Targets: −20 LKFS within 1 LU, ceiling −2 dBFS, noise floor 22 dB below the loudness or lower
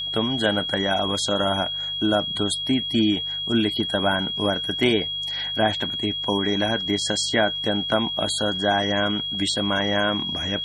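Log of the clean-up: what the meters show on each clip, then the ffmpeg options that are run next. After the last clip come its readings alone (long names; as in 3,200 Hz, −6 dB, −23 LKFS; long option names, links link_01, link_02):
mains hum 50 Hz; hum harmonics up to 150 Hz; level of the hum −48 dBFS; interfering tone 3,300 Hz; level of the tone −26 dBFS; integrated loudness −22.5 LKFS; sample peak −5.5 dBFS; target loudness −20.0 LKFS
→ -af "bandreject=frequency=50:width_type=h:width=4,bandreject=frequency=100:width_type=h:width=4,bandreject=frequency=150:width_type=h:width=4"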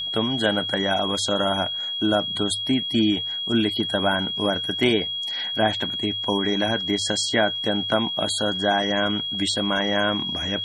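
mains hum none found; interfering tone 3,300 Hz; level of the tone −26 dBFS
→ -af "bandreject=frequency=3300:width=30"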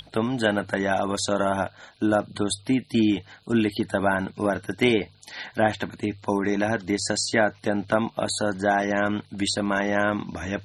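interfering tone none found; integrated loudness −25.0 LKFS; sample peak −6.0 dBFS; target loudness −20.0 LKFS
→ -af "volume=5dB,alimiter=limit=-2dB:level=0:latency=1"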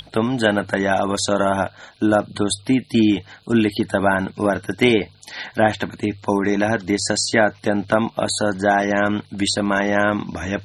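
integrated loudness −20.0 LKFS; sample peak −2.0 dBFS; background noise floor −48 dBFS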